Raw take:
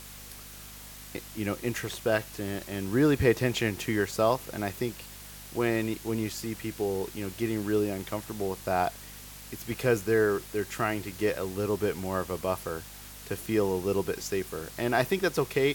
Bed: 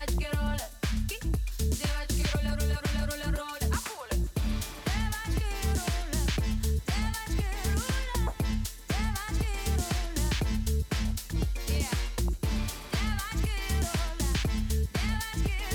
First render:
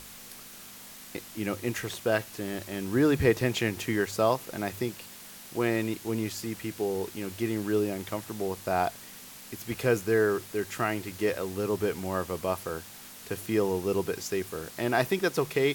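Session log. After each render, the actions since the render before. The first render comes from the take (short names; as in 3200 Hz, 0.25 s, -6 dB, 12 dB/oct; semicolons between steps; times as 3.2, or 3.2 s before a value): de-hum 50 Hz, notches 3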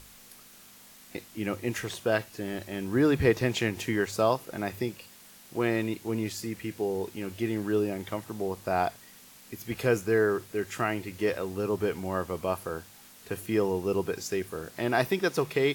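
noise print and reduce 6 dB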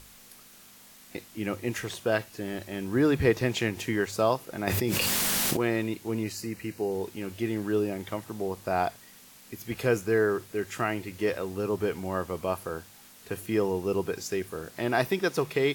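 4.67–5.57 fast leveller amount 100%; 6.23–6.92 Butterworth band-stop 3400 Hz, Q 5.5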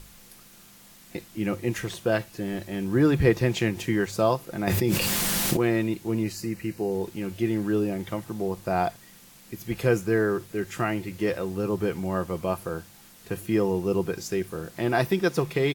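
low shelf 250 Hz +7.5 dB; comb 5.8 ms, depth 31%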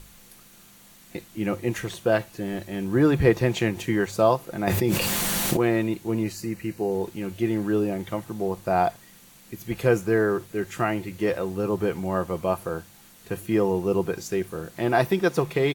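notch 5100 Hz, Q 14; dynamic EQ 760 Hz, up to +4 dB, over -35 dBFS, Q 0.83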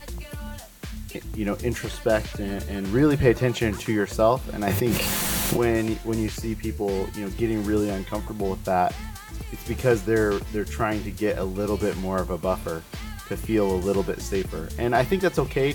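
add bed -6 dB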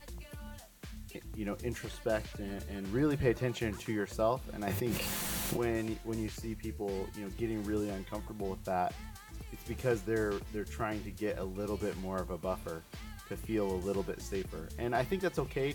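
gain -11 dB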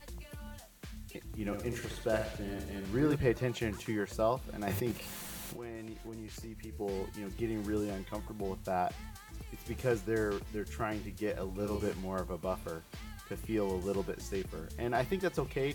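1.23–3.16 flutter echo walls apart 10.9 m, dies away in 0.59 s; 4.91–6.73 compressor 4:1, threshold -41 dBFS; 11.45–11.92 doubler 39 ms -5.5 dB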